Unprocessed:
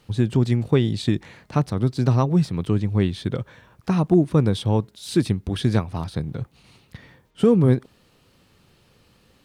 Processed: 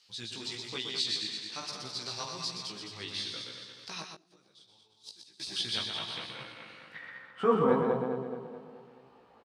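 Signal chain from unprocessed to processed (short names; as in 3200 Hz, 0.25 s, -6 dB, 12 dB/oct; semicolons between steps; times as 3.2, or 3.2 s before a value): regenerating reverse delay 0.107 s, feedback 71%, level -5 dB; 4.02–5.4 flipped gate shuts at -15 dBFS, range -26 dB; band-pass sweep 4900 Hz -> 820 Hz, 5.53–8.01; on a send: echo 0.124 s -6 dB; on the sum: chorus 1.1 Hz, delay 15 ms, depth 4.3 ms; gain +8.5 dB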